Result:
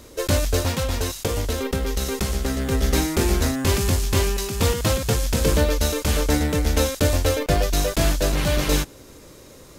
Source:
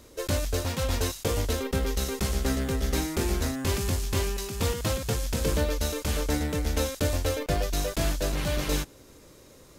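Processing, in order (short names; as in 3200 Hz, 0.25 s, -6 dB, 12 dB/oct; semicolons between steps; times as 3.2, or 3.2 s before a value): 0.69–2.72 compressor, threshold -27 dBFS, peak gain reduction 5.5 dB; gain +7 dB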